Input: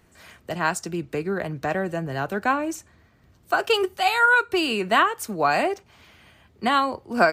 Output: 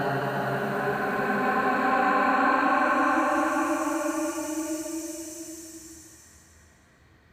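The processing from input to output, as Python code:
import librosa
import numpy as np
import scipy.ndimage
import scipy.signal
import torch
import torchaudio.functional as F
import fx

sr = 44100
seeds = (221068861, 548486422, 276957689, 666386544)

y = fx.paulstretch(x, sr, seeds[0], factor=8.9, window_s=0.5, from_s=2.23)
y = fx.hum_notches(y, sr, base_hz=50, count=4)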